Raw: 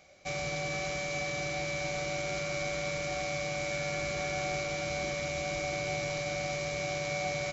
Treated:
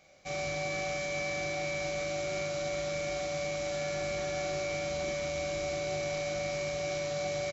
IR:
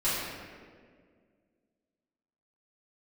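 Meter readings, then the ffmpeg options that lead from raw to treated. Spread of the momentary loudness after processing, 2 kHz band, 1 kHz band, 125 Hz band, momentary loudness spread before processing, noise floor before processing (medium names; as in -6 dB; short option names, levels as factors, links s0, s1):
1 LU, -2.5 dB, -2.0 dB, -2.5 dB, 1 LU, -35 dBFS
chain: -filter_complex "[0:a]acontrast=40,asplit=2[s0][s1];[s1]aecho=0:1:21|40|69:0.316|0.631|0.376[s2];[s0][s2]amix=inputs=2:normalize=0,volume=0.355"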